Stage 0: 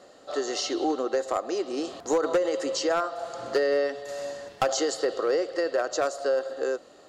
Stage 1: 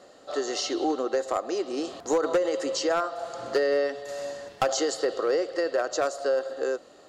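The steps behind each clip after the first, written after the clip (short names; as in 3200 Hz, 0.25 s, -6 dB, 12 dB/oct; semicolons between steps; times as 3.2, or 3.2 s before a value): nothing audible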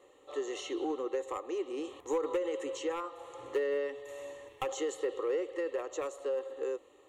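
fixed phaser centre 1000 Hz, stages 8; in parallel at -11 dB: soft clip -29 dBFS, distortion -9 dB; on the sum: gain -7 dB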